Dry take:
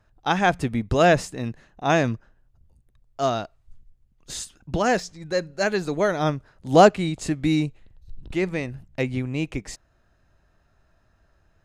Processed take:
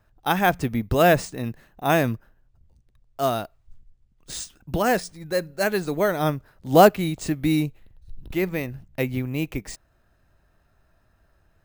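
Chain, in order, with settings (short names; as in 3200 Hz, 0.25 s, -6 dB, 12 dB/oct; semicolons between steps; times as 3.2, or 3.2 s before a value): careless resampling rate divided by 3×, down none, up hold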